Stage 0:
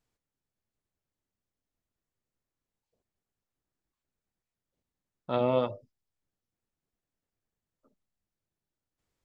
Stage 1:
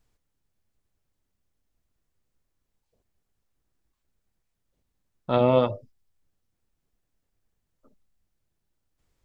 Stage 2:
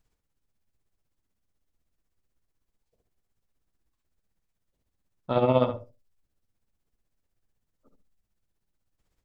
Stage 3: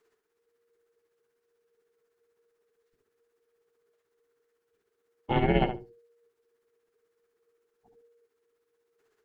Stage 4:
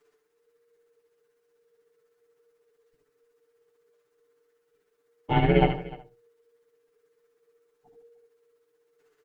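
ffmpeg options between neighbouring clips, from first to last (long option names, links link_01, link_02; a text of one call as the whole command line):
ffmpeg -i in.wav -af "lowshelf=frequency=69:gain=12,volume=6dB" out.wav
ffmpeg -i in.wav -filter_complex "[0:a]tremolo=f=16:d=0.59,asplit=2[link_01][link_02];[link_02]adelay=71,lowpass=frequency=2200:poles=1,volume=-7dB,asplit=2[link_03][link_04];[link_04]adelay=71,lowpass=frequency=2200:poles=1,volume=0.16,asplit=2[link_05][link_06];[link_06]adelay=71,lowpass=frequency=2200:poles=1,volume=0.16[link_07];[link_01][link_03][link_05][link_07]amix=inputs=4:normalize=0" out.wav
ffmpeg -i in.wav -af "equalizer=frequency=250:width_type=o:width=1:gain=-6,equalizer=frequency=500:width_type=o:width=1:gain=-6,equalizer=frequency=1000:width_type=o:width=1:gain=4,equalizer=frequency=2000:width_type=o:width=1:gain=11,afreqshift=-470" out.wav
ffmpeg -i in.wav -af "aecho=1:1:6.8:0.93,aecho=1:1:79|301:0.398|0.112" out.wav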